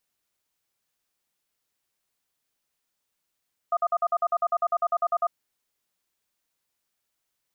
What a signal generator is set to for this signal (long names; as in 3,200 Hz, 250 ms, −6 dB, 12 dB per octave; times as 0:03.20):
tone pair in a cadence 690 Hz, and 1,230 Hz, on 0.05 s, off 0.05 s, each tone −23 dBFS 1.60 s